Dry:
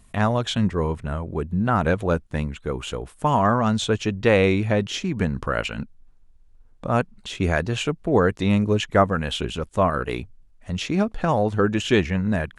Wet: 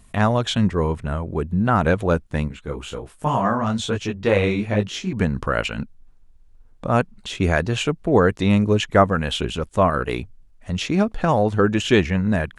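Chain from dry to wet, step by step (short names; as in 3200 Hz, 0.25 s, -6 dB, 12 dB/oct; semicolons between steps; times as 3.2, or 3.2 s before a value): 2.48–5.13 detuned doubles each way 45 cents; gain +2.5 dB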